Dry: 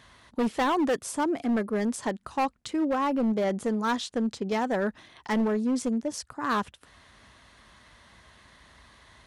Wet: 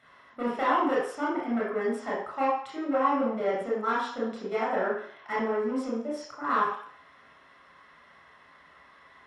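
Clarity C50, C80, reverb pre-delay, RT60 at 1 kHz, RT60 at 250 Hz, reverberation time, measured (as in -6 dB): 1.5 dB, 5.5 dB, 22 ms, 0.60 s, 0.55 s, 0.60 s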